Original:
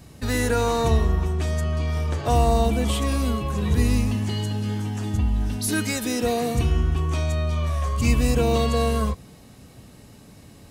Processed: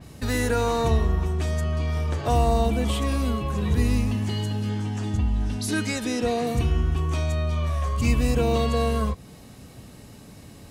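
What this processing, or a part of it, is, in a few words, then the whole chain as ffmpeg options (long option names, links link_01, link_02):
parallel compression: -filter_complex "[0:a]asplit=2[link_01][link_02];[link_02]acompressor=threshold=-33dB:ratio=6,volume=-3.5dB[link_03];[link_01][link_03]amix=inputs=2:normalize=0,asettb=1/sr,asplit=3[link_04][link_05][link_06];[link_04]atrim=end=4.694[link_07];[link_05]atrim=start=4.69:end=6.47,asetpts=PTS-STARTPTS,afade=type=in:duration=0.004:curve=qsin,afade=type=out:start_time=1.776:duration=0.004:curve=qsin,lowpass=8600[link_08];[link_06]atrim=start=6.466[link_09];[link_07][link_08]acrossfade=duration=0.004:curve1=hsin:curve2=qsin[link_10];[link_10][link_09]acrossfade=duration=0.004:curve1=qsin:curve2=hsin,adynamicequalizer=threshold=0.00891:dfrequency=4500:dqfactor=0.7:tfrequency=4500:tqfactor=0.7:attack=5:release=100:ratio=0.375:range=2:mode=cutabove:tftype=highshelf,volume=-2.5dB"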